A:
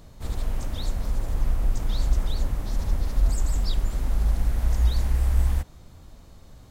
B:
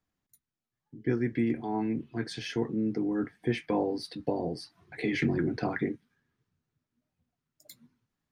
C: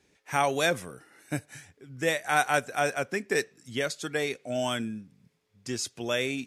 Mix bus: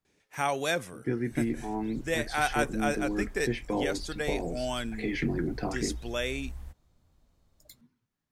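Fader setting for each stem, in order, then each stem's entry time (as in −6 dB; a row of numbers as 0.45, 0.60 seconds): −19.5, −2.0, −3.5 decibels; 1.10, 0.00, 0.05 seconds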